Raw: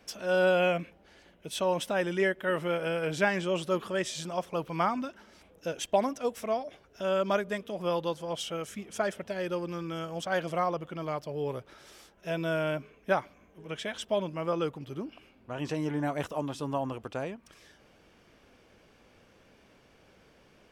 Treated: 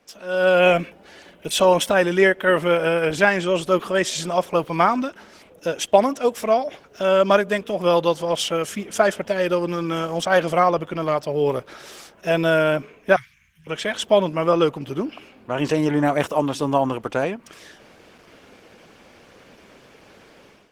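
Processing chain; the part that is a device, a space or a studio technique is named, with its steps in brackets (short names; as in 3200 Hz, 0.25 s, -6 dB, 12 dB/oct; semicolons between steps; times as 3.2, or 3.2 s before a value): 13.16–13.67 elliptic band-stop 130–1800 Hz, stop band 70 dB; video call (HPF 180 Hz 6 dB/oct; AGC gain up to 14 dB; Opus 16 kbps 48000 Hz)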